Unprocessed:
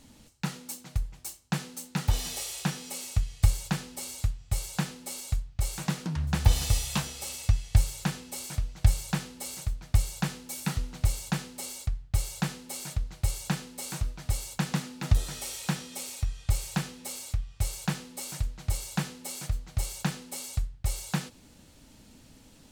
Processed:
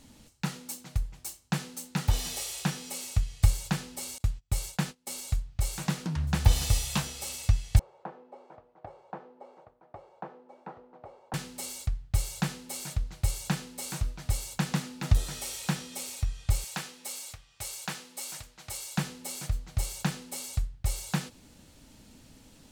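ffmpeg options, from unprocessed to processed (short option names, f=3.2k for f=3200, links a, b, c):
-filter_complex "[0:a]asettb=1/sr,asplit=3[a][b][c];[a]atrim=end=4.184[d];[b]atrim=start=4.18:end=5.18,asetpts=PTS-STARTPTS,afade=t=in:d=0.004:c=qsin,afade=t=out:st=0.996:d=0.004:c=qsin,agate=range=-25dB:threshold=-42dB:ratio=16:release=100:detection=peak[e];[c]atrim=start=5.176[f];[d][e]acrossfade=d=0.004:c1=hsin:c2=qsin[g];[g][f]acrossfade=d=0.004:c1=qsin:c2=hsin,asettb=1/sr,asplit=3[h][i][j];[h]atrim=end=7.794[k];[i]atrim=start=7.79:end=11.34,asetpts=PTS-STARTPTS,afade=t=in:d=0.004:c=qsin,afade=t=out:st=3.546:d=0.004:c=qsin,asuperpass=centerf=610:order=4:qfactor=1[l];[j]atrim=start=11.336[m];[k][l]acrossfade=d=0.004:c1=hsin:c2=qsin[n];[n][m]acrossfade=d=0.004:c1=qsin:c2=hsin,asettb=1/sr,asplit=3[o][p][q];[o]atrim=end=16.644[r];[p]atrim=start=16.64:end=18.98,asetpts=PTS-STARTPTS,afade=t=in:d=0.004:c=qsin,afade=t=out:st=2.336:d=0.004:c=qsin,highpass=f=670:p=1[s];[q]atrim=start=18.976[t];[r][s]acrossfade=d=0.004:c1=hsin:c2=qsin[u];[u][t]acrossfade=d=0.004:c1=qsin:c2=hsin"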